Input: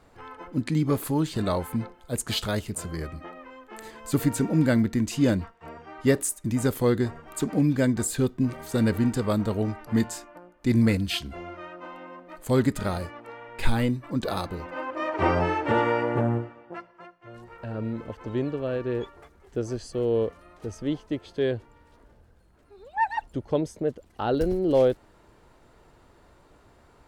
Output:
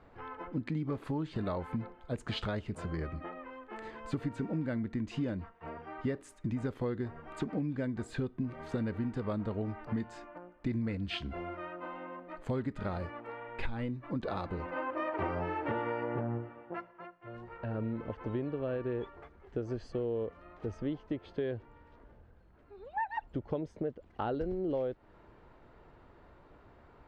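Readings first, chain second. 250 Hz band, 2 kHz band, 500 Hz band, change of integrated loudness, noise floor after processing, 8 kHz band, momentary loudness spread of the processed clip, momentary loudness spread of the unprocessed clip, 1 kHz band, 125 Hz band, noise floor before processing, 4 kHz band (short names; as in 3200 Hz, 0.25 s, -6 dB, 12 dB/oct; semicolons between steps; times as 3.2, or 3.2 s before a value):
-10.5 dB, -9.5 dB, -10.0 dB, -11.0 dB, -60 dBFS, under -25 dB, 10 LU, 18 LU, -8.5 dB, -9.5 dB, -58 dBFS, -11.5 dB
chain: LPF 2600 Hz 12 dB/oct; compressor 6:1, threshold -30 dBFS, peak gain reduction 15.5 dB; gain -1.5 dB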